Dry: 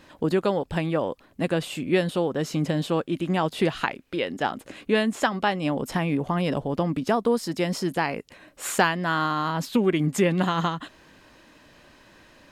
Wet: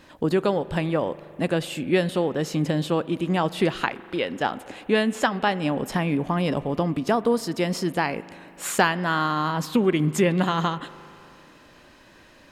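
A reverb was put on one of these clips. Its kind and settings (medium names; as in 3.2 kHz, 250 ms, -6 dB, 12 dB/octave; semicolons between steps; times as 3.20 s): spring tank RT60 2.9 s, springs 39 ms, chirp 75 ms, DRR 17 dB; trim +1 dB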